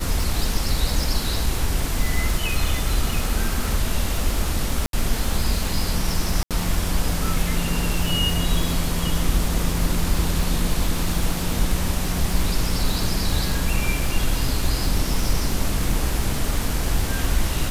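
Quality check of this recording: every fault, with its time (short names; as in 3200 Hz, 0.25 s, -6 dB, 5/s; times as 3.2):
crackle 97/s -24 dBFS
4.86–4.93 gap 72 ms
6.43–6.51 gap 77 ms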